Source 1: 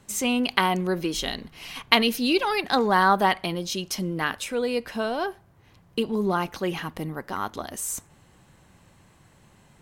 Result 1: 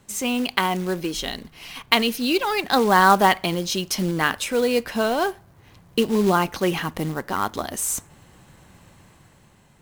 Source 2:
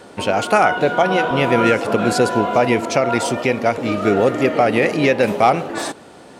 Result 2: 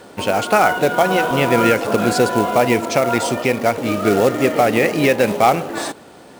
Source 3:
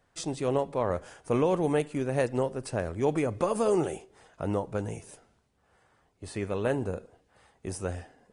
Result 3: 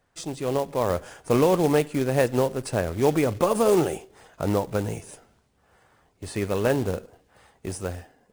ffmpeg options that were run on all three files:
-af "acrusher=bits=4:mode=log:mix=0:aa=0.000001,dynaudnorm=f=110:g=13:m=1.88"

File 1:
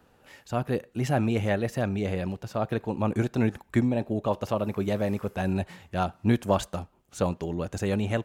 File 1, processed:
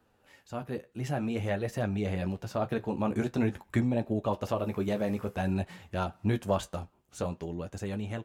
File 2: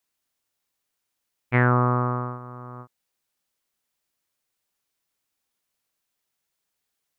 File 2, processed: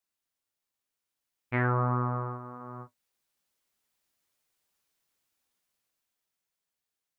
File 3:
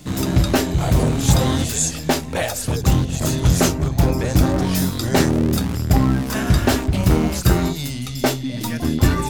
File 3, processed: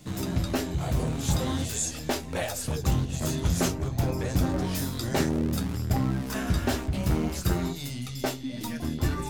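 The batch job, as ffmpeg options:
-filter_complex "[0:a]dynaudnorm=f=240:g=13:m=2.82,flanger=delay=8.7:depth=5.9:regen=-40:speed=0.5:shape=triangular,asplit=2[s0][s1];[s1]acompressor=threshold=0.0447:ratio=6,volume=0.75[s2];[s0][s2]amix=inputs=2:normalize=0,volume=0.355"

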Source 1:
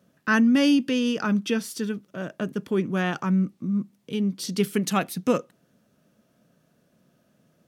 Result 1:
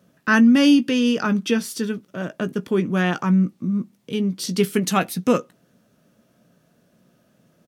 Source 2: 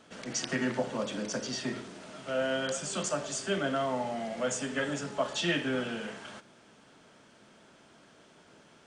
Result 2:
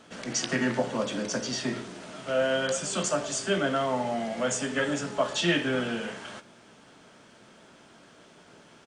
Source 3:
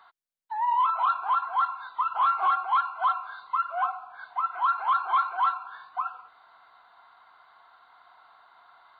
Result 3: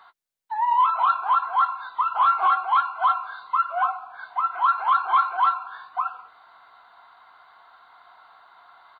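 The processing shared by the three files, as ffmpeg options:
-filter_complex "[0:a]asplit=2[s0][s1];[s1]adelay=17,volume=0.251[s2];[s0][s2]amix=inputs=2:normalize=0,volume=1.58"

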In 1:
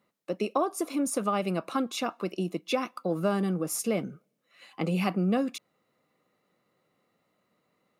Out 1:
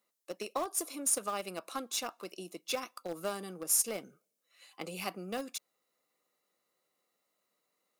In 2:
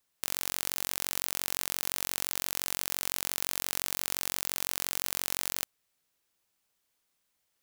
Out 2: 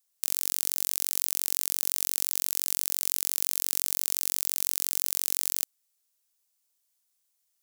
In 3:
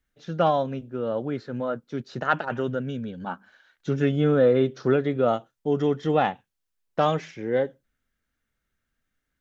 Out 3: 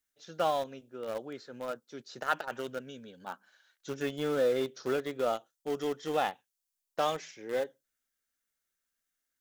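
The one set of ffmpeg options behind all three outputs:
-filter_complex "[0:a]bass=f=250:g=-14,treble=f=4000:g=13,asplit=2[s0][s1];[s1]acrusher=bits=3:mix=0:aa=0.000001,volume=0.251[s2];[s0][s2]amix=inputs=2:normalize=0,volume=0.355"

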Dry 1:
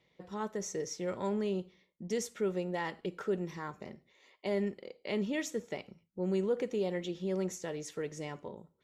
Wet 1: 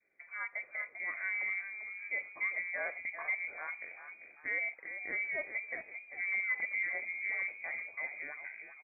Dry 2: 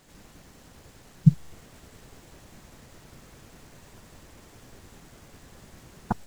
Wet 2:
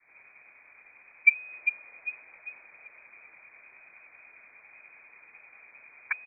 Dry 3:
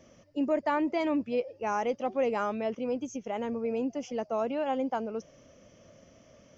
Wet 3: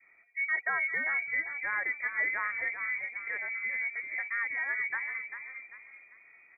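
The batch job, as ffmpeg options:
-filter_complex "[0:a]asplit=6[s0][s1][s2][s3][s4][s5];[s1]adelay=394,afreqshift=-60,volume=0.376[s6];[s2]adelay=788,afreqshift=-120,volume=0.158[s7];[s3]adelay=1182,afreqshift=-180,volume=0.0661[s8];[s4]adelay=1576,afreqshift=-240,volume=0.0279[s9];[s5]adelay=1970,afreqshift=-300,volume=0.0117[s10];[s0][s6][s7][s8][s9][s10]amix=inputs=6:normalize=0,lowpass=f=2100:t=q:w=0.5098,lowpass=f=2100:t=q:w=0.6013,lowpass=f=2100:t=q:w=0.9,lowpass=f=2100:t=q:w=2.563,afreqshift=-2500,adynamicequalizer=threshold=0.00355:dfrequency=570:dqfactor=0.8:tfrequency=570:tqfactor=0.8:attack=5:release=100:ratio=0.375:range=2.5:mode=boostabove:tftype=bell,volume=0.631"

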